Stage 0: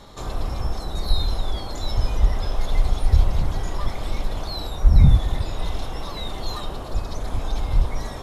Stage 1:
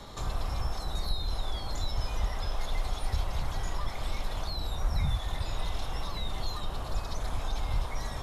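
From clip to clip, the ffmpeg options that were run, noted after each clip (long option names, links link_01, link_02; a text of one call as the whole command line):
ffmpeg -i in.wav -filter_complex "[0:a]acrossover=split=180|640[link_01][link_02][link_03];[link_01]acompressor=threshold=-28dB:ratio=4[link_04];[link_02]acompressor=threshold=-52dB:ratio=4[link_05];[link_03]acompressor=threshold=-39dB:ratio=4[link_06];[link_04][link_05][link_06]amix=inputs=3:normalize=0" out.wav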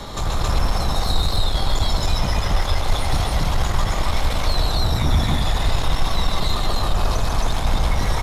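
ffmpeg -i in.wav -filter_complex "[0:a]aeval=exprs='0.133*sin(PI/2*2.82*val(0)/0.133)':channel_layout=same,asplit=2[link_01][link_02];[link_02]aecho=0:1:142.9|271.1:0.631|1[link_03];[link_01][link_03]amix=inputs=2:normalize=0" out.wav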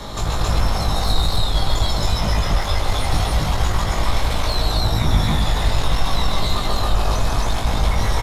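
ffmpeg -i in.wav -filter_complex "[0:a]asplit=2[link_01][link_02];[link_02]adelay=19,volume=-4dB[link_03];[link_01][link_03]amix=inputs=2:normalize=0" out.wav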